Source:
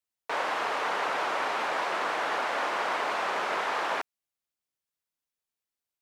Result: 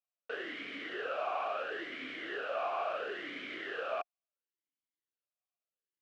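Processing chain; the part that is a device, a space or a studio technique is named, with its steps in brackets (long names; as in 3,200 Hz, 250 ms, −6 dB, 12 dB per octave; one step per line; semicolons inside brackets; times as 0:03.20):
talk box (tube saturation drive 24 dB, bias 0.55; formant filter swept between two vowels a-i 0.73 Hz)
level +6.5 dB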